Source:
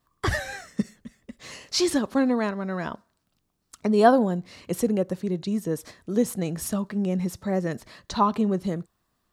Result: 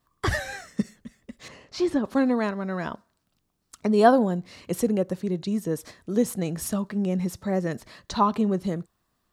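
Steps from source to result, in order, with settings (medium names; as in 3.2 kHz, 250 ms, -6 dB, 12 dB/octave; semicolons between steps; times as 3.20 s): 1.48–2.05 s: low-pass 1.1 kHz 6 dB/octave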